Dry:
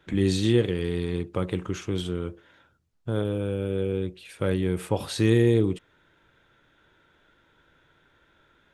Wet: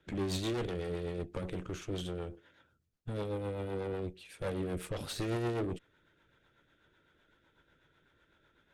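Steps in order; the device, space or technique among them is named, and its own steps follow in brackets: overdriven rotary cabinet (tube stage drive 30 dB, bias 0.75; rotary speaker horn 8 Hz)

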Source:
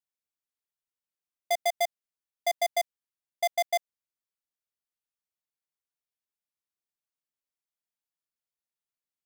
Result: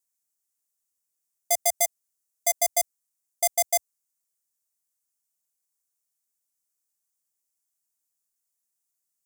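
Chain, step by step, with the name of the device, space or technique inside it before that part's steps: 1.74–2.58 comb 6.3 ms, depth 35%; budget condenser microphone (HPF 69 Hz 24 dB/oct; resonant high shelf 5000 Hz +13 dB, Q 1.5)

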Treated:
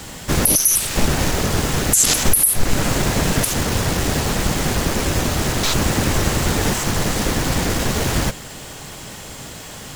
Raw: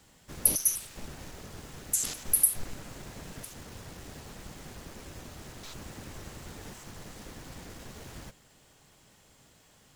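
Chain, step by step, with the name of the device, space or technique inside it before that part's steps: loud club master (compressor 2.5:1, threshold -35 dBFS, peak gain reduction 12.5 dB; hard clip -18 dBFS, distortion -28 dB; maximiser +28.5 dB); gain -2.5 dB

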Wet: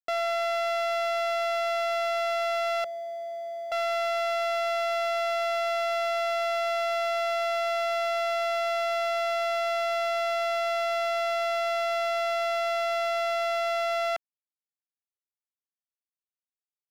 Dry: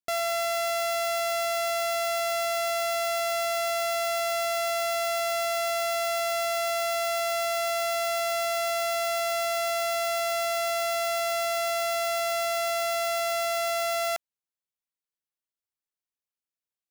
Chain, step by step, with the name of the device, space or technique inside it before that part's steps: 2.84–3.72 elliptic band-pass 220–600 Hz, stop band 70 dB; phone line with mismatched companding (BPF 370–3500 Hz; G.711 law mismatch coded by mu)

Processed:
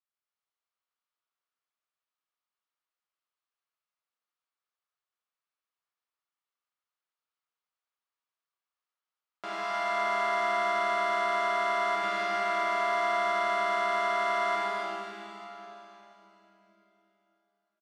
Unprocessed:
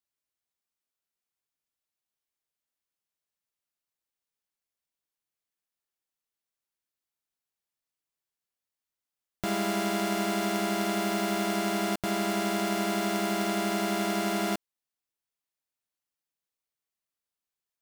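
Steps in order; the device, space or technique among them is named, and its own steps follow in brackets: station announcement (BPF 490–4100 Hz; bell 1200 Hz +8.5 dB 0.48 oct; loudspeakers at several distances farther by 31 m -9 dB, 93 m -3 dB; reverb RT60 3.8 s, pre-delay 46 ms, DRR -2 dB); gain -6.5 dB

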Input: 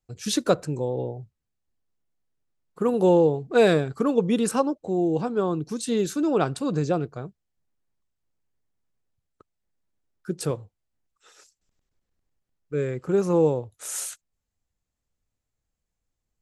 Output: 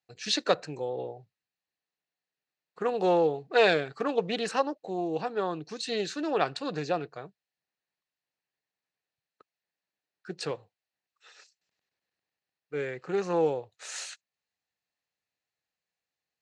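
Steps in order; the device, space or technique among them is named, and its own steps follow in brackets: full-range speaker at full volume (Doppler distortion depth 0.13 ms; speaker cabinet 230–6800 Hz, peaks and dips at 240 Hz -8 dB, 350 Hz -4 dB, 760 Hz +4 dB, 1800 Hz +9 dB, 2600 Hz +8 dB, 4200 Hz +9 dB); gain -4 dB

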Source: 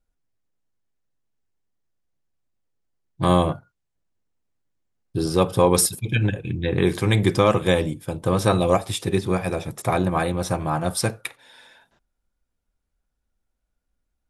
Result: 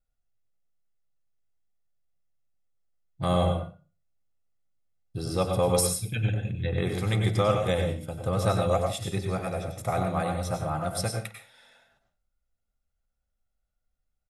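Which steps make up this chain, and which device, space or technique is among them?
microphone above a desk (comb 1.5 ms, depth 53%; reverb RT60 0.35 s, pre-delay 89 ms, DRR 4 dB); gain -8.5 dB

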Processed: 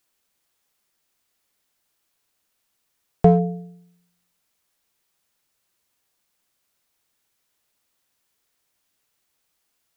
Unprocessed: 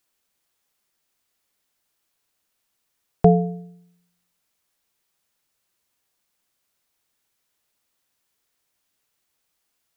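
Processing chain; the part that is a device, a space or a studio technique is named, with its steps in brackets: parallel distortion (in parallel at -9.5 dB: hard clip -15 dBFS, distortion -6 dB); on the sum: gain -1 dB

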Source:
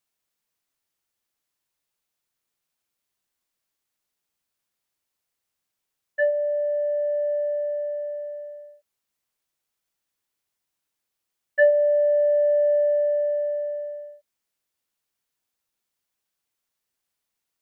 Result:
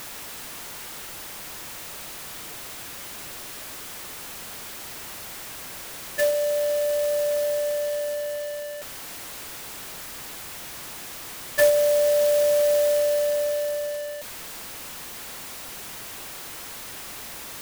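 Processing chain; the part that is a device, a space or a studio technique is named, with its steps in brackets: early CD player with a faulty converter (zero-crossing step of -28 dBFS; clock jitter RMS 0.058 ms); gain -1.5 dB

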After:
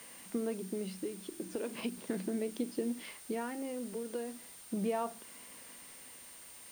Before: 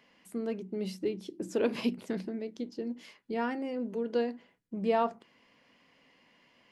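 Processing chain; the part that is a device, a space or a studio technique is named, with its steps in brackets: medium wave at night (BPF 150–3700 Hz; compressor, threshold -38 dBFS, peak gain reduction 14.5 dB; tremolo 0.38 Hz, depth 51%; whine 9000 Hz -60 dBFS; white noise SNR 16 dB); gain +7 dB

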